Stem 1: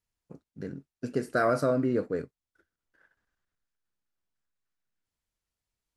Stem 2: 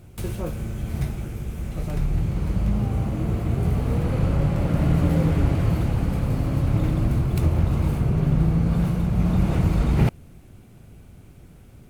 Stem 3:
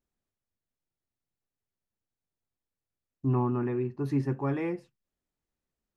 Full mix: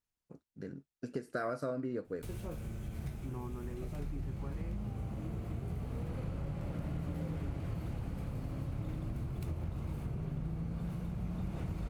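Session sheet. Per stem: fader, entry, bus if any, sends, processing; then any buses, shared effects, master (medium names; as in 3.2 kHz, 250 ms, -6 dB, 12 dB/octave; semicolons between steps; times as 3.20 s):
+0.5 dB, 0.00 s, no send, upward expansion 1.5:1, over -35 dBFS
-10.5 dB, 2.05 s, no send, none
-13.5 dB, 0.00 s, no send, none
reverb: none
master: compression 3:1, threshold -37 dBFS, peak gain reduction 12 dB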